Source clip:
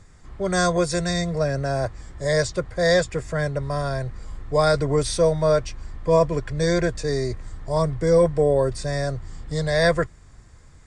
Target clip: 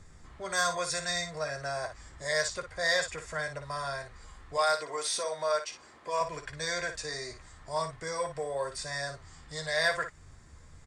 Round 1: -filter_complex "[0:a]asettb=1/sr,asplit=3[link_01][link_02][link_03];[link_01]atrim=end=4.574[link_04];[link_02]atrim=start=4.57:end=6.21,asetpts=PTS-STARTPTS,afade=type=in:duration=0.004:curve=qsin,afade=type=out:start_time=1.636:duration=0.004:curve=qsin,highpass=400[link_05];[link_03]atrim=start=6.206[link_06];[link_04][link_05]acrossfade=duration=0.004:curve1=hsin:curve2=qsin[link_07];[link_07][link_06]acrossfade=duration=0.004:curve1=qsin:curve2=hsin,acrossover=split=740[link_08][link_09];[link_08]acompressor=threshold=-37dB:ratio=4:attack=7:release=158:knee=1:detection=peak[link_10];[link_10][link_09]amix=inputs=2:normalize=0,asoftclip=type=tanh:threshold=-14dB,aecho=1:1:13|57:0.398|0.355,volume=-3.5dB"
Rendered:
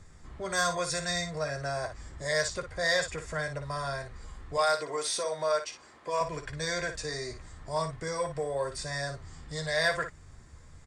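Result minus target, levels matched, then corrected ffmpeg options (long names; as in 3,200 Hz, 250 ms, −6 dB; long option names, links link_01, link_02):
downward compressor: peak gain reduction −6.5 dB
-filter_complex "[0:a]asettb=1/sr,asplit=3[link_01][link_02][link_03];[link_01]atrim=end=4.574[link_04];[link_02]atrim=start=4.57:end=6.21,asetpts=PTS-STARTPTS,afade=type=in:duration=0.004:curve=qsin,afade=type=out:start_time=1.636:duration=0.004:curve=qsin,highpass=400[link_05];[link_03]atrim=start=6.206[link_06];[link_04][link_05]acrossfade=duration=0.004:curve1=hsin:curve2=qsin[link_07];[link_07][link_06]acrossfade=duration=0.004:curve1=qsin:curve2=hsin,acrossover=split=740[link_08][link_09];[link_08]acompressor=threshold=-45.5dB:ratio=4:attack=7:release=158:knee=1:detection=peak[link_10];[link_10][link_09]amix=inputs=2:normalize=0,asoftclip=type=tanh:threshold=-14dB,aecho=1:1:13|57:0.398|0.355,volume=-3.5dB"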